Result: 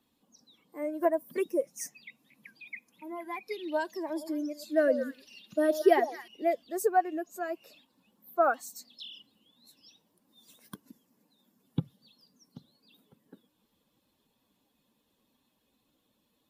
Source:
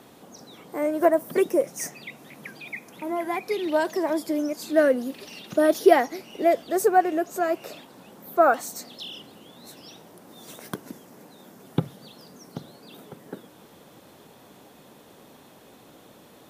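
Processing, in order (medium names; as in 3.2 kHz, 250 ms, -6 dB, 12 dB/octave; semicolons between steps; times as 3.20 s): expander on every frequency bin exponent 1.5; 4.05–6.28 s: repeats whose band climbs or falls 110 ms, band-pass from 560 Hz, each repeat 1.4 oct, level -7 dB; trim -5 dB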